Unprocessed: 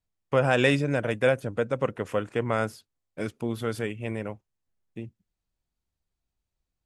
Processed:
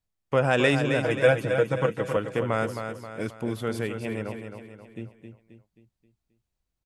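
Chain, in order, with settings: 1.03–2.17 comb 6.2 ms, depth 77%; feedback echo 0.266 s, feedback 46%, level -7.5 dB

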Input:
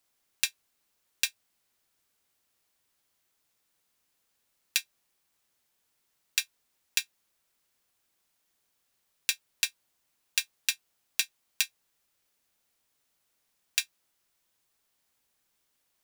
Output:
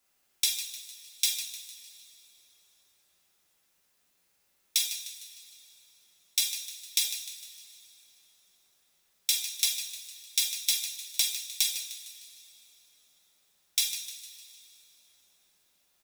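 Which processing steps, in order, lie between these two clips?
frequency-shifting echo 0.152 s, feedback 48%, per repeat +45 Hz, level -11 dB; formant shift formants +6 st; two-slope reverb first 0.49 s, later 3.4 s, from -19 dB, DRR -3.5 dB; gain -1 dB

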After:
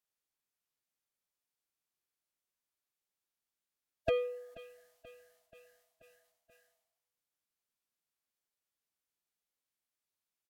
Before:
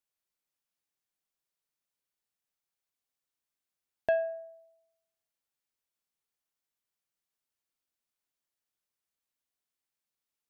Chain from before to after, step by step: feedback echo 0.482 s, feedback 60%, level -20.5 dB; formant-preserving pitch shift -5 st; gain -2 dB

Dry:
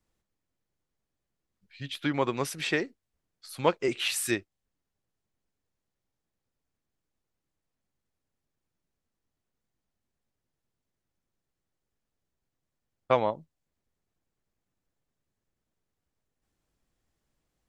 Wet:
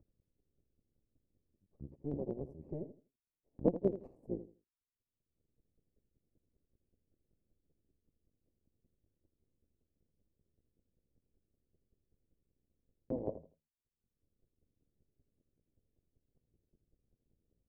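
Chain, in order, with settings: cycle switcher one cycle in 2, muted; inverse Chebyshev low-pass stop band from 1300 Hz, stop band 50 dB; gate with hold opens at -57 dBFS; upward compressor, threshold -51 dBFS; chopper 5.2 Hz, depth 65%, duty 15%; feedback echo 81 ms, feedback 23%, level -12.5 dB; mismatched tape noise reduction decoder only; gain +3.5 dB

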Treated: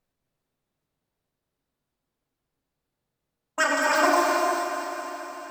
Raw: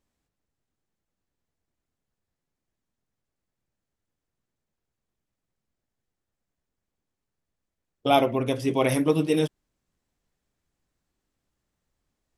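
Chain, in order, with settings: diffused feedback echo 0.548 s, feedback 69%, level -8.5 dB; wide varispeed 2.25×; non-linear reverb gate 0.47 s flat, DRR -2.5 dB; gain -2.5 dB

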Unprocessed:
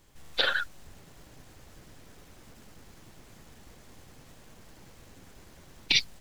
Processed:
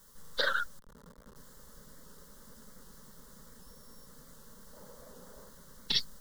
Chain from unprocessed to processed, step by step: 3.62–4.06 sample sorter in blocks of 8 samples; 4.73–5.49 bell 640 Hz +11.5 dB 1.2 oct; requantised 10-bit, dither triangular; 0.79–1.36 Schmitt trigger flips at -52.5 dBFS; fixed phaser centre 490 Hz, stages 8; record warp 78 rpm, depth 100 cents

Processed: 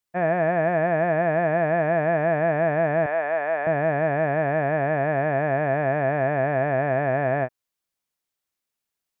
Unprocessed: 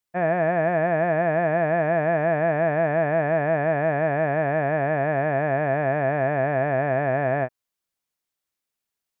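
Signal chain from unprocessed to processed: 3.06–3.67 HPF 560 Hz 12 dB/oct

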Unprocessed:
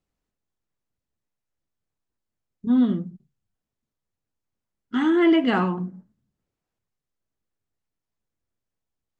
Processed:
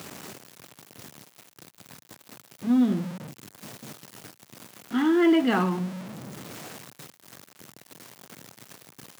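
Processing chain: zero-crossing step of -29.5 dBFS; HPF 120 Hz 24 dB/oct; gain -3 dB

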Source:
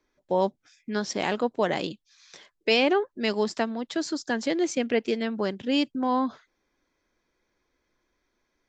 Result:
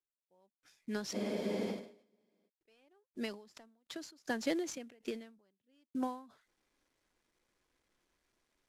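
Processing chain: CVSD 64 kbps; spectral freeze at 1.17, 1.30 s; ending taper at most 110 dB/s; gain -6.5 dB

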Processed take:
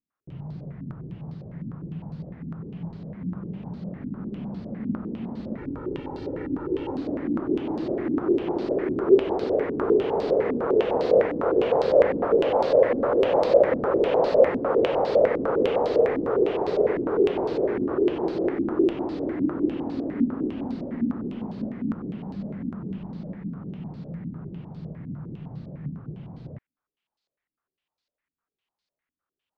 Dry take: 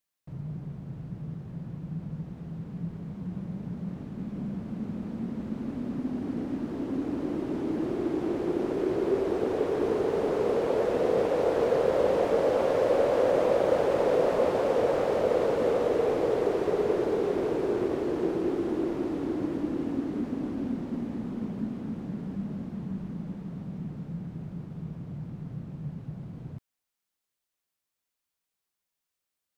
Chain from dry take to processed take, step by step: 5.58–6.95 comb 2.2 ms, depth 94%; stepped low-pass 9.9 Hz 260–4400 Hz

